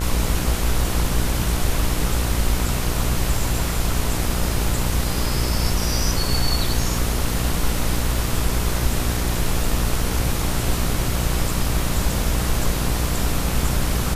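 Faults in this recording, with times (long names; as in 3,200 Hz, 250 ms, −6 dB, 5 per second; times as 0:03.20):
mains buzz 60 Hz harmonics 25 −25 dBFS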